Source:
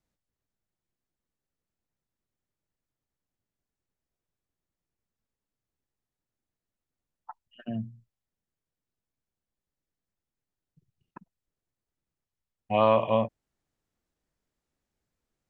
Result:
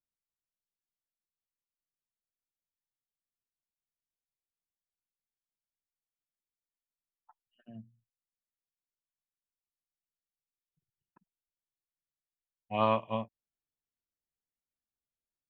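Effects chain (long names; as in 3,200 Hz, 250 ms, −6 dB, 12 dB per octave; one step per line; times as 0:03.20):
dynamic equaliser 530 Hz, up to −6 dB, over −34 dBFS, Q 2
expander for the loud parts 2.5 to 1, over −34 dBFS
level −1 dB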